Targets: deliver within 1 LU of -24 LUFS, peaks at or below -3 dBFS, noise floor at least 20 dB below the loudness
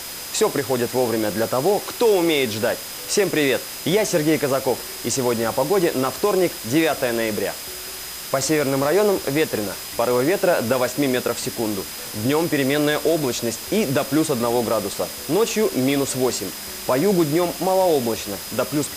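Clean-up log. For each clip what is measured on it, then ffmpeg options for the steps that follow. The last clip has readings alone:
steady tone 5000 Hz; tone level -39 dBFS; noise floor -33 dBFS; noise floor target -41 dBFS; loudness -21.0 LUFS; peak -7.0 dBFS; loudness target -24.0 LUFS
-> -af "bandreject=f=5k:w=30"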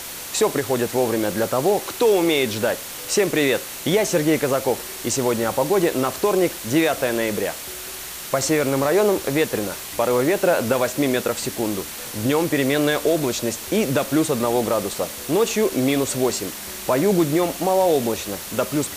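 steady tone none; noise floor -34 dBFS; noise floor target -41 dBFS
-> -af "afftdn=nr=7:nf=-34"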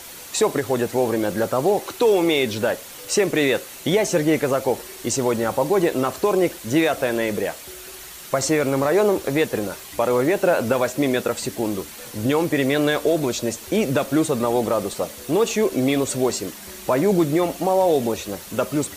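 noise floor -39 dBFS; noise floor target -42 dBFS
-> -af "afftdn=nr=6:nf=-39"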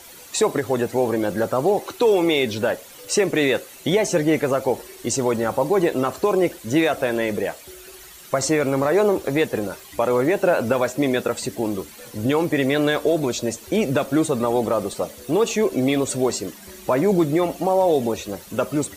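noise floor -43 dBFS; loudness -21.5 LUFS; peak -8.0 dBFS; loudness target -24.0 LUFS
-> -af "volume=-2.5dB"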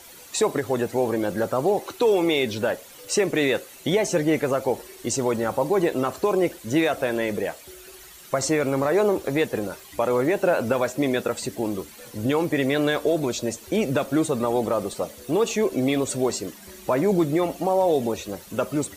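loudness -24.0 LUFS; peak -10.5 dBFS; noise floor -46 dBFS

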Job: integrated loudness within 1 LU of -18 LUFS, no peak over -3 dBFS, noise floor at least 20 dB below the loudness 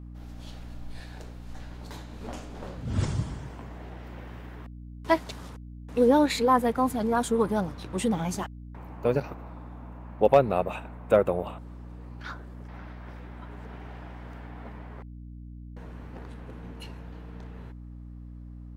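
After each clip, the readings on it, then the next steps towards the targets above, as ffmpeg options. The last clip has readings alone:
hum 60 Hz; harmonics up to 300 Hz; hum level -40 dBFS; loudness -26.5 LUFS; peak -8.0 dBFS; loudness target -18.0 LUFS
-> -af "bandreject=f=60:t=h:w=6,bandreject=f=120:t=h:w=6,bandreject=f=180:t=h:w=6,bandreject=f=240:t=h:w=6,bandreject=f=300:t=h:w=6"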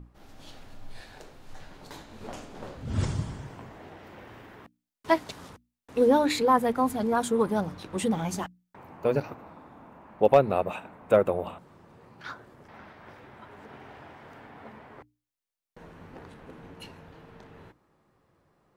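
hum none; loudness -26.5 LUFS; peak -8.0 dBFS; loudness target -18.0 LUFS
-> -af "volume=8.5dB,alimiter=limit=-3dB:level=0:latency=1"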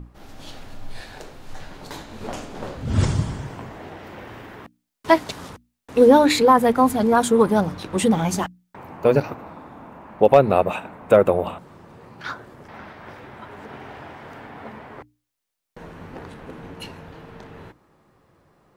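loudness -18.5 LUFS; peak -3.0 dBFS; noise floor -77 dBFS

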